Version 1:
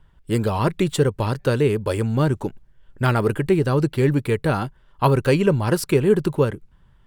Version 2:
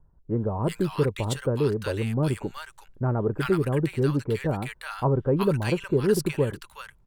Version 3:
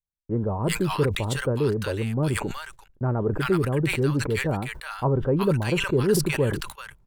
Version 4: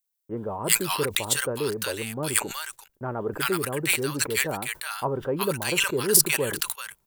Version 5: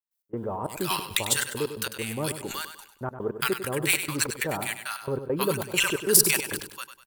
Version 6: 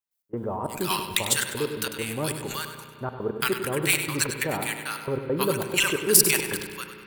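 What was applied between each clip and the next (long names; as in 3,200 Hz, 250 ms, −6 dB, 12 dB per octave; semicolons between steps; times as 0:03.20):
multiband delay without the direct sound lows, highs 370 ms, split 1,100 Hz; level −5 dB
noise gate −44 dBFS, range −39 dB; level that may fall only so fast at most 61 dB per second
RIAA equalisation recording
gate pattern ".x.xxx.xx.xxx.x" 136 BPM −24 dB; on a send: repeating echo 99 ms, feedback 37%, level −10 dB
spring reverb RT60 2.6 s, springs 33/56 ms, chirp 25 ms, DRR 9.5 dB; level +1 dB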